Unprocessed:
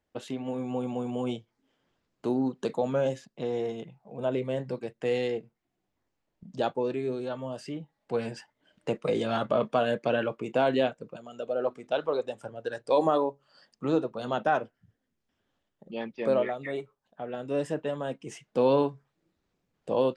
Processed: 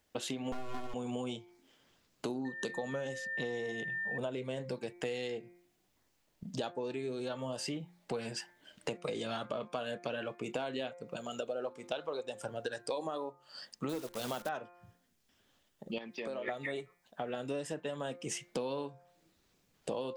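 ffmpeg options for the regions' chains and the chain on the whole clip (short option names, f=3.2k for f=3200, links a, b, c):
-filter_complex "[0:a]asettb=1/sr,asplit=3[a][b][c];[a]atrim=end=0.524[d];[b]atrim=start=0.52:end=0.94,asetpts=PTS-STARTPTS,afade=t=in:d=0.004:c=qsin,afade=t=out:st=0.416:d=0.004:c=qsin,highshelf=f=3.4k:g=-11,aeval=exprs='abs(val(0))':c=same,aecho=1:1:2.8:0.75,atrim=end_sample=18522[e];[c]atrim=start=0.936[f];[d][e]acrossfade=d=0.004:c1=hsin:c2=qsin[g];[g][f]acrossfade=d=0.004:c1=qsin:c2=hsin,asettb=1/sr,asplit=3[h][i][j];[h]atrim=end=2.454[k];[i]atrim=start=2.45:end=4.18,asetpts=PTS-STARTPTS,afade=t=in:d=0.004:c=qsin,afade=t=out:st=1.726:d=0.004:c=qsin,bandreject=f=650:w=12,aeval=exprs='val(0)+0.0112*sin(2*PI*1800*n/s)':c=same[l];[j]atrim=start=4.176[m];[k][l]acrossfade=d=0.004:c1=hsin:c2=qsin[n];[n][m]acrossfade=d=0.004:c1=qsin:c2=hsin,asettb=1/sr,asplit=3[o][p][q];[o]atrim=end=13.894[r];[p]atrim=start=13.89:end=14.49,asetpts=PTS-STARTPTS,afade=t=in:d=0.004:c=qsin,afade=t=out:st=0.596:d=0.004:c=qsin,acrusher=bits=8:dc=4:mix=0:aa=0.000001,asoftclip=type=hard:threshold=-17.5dB[s];[q]atrim=start=14.486[t];[r][s]acrossfade=d=0.004:c1=hsin:c2=qsin[u];[u][t]acrossfade=d=0.004:c1=qsin:c2=hsin,asettb=1/sr,asplit=3[v][w][x];[v]atrim=end=15.984[y];[w]atrim=start=15.98:end=16.48,asetpts=PTS-STARTPTS,afade=t=in:d=0.004:c=qsin,afade=t=out:st=0.496:d=0.004:c=qsin,highpass=160,acompressor=threshold=-42dB:ratio=4:attack=3.2:release=140:knee=1:detection=peak[z];[x]atrim=start=16.476[aa];[y][z]acrossfade=d=0.004:c1=hsin:c2=qsin[ab];[ab][aa]acrossfade=d=0.004:c1=qsin:c2=hsin,highshelf=f=2.5k:g=11,bandreject=f=175.8:t=h:w=4,bandreject=f=351.6:t=h:w=4,bandreject=f=527.4:t=h:w=4,bandreject=f=703.2:t=h:w=4,bandreject=f=879:t=h:w=4,bandreject=f=1.0548k:t=h:w=4,bandreject=f=1.2306k:t=h:w=4,bandreject=f=1.4064k:t=h:w=4,bandreject=f=1.5822k:t=h:w=4,bandreject=f=1.758k:t=h:w=4,bandreject=f=1.9338k:t=h:w=4,bandreject=f=2.1096k:t=h:w=4,bandreject=f=2.2854k:t=h:w=4,bandreject=f=2.4612k:t=h:w=4,acompressor=threshold=-38dB:ratio=10,volume=3.5dB"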